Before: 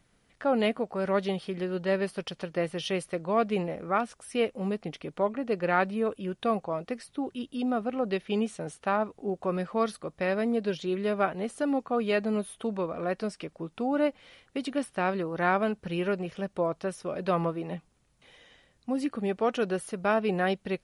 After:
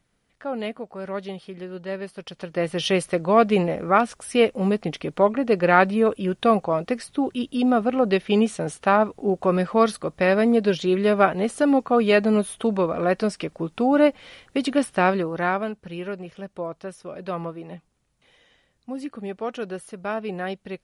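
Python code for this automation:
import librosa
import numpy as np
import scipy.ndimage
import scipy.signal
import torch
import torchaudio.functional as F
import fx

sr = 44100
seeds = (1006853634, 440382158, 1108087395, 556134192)

y = fx.gain(x, sr, db=fx.line((2.15, -3.5), (2.84, 9.0), (15.05, 9.0), (15.79, -2.5)))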